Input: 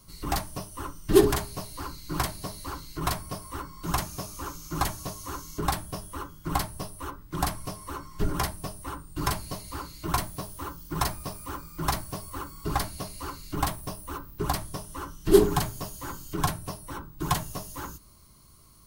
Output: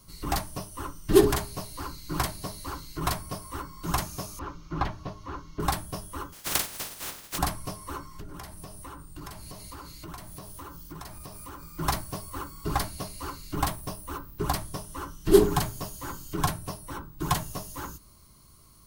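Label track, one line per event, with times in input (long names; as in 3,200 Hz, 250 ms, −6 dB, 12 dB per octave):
4.390000	5.600000	high-frequency loss of the air 260 metres
6.320000	7.370000	compressing power law on the bin magnitudes exponent 0.15
8.050000	11.790000	downward compressor, threshold −38 dBFS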